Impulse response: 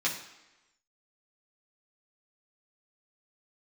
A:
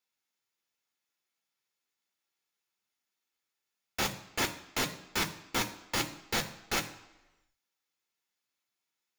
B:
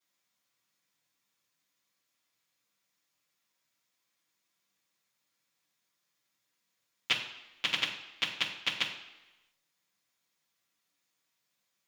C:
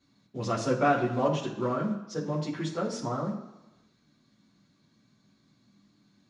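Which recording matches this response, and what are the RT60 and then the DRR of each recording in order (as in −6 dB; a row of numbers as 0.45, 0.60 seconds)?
C; 1.0, 1.0, 1.0 seconds; 4.5, −11.0, −5.5 decibels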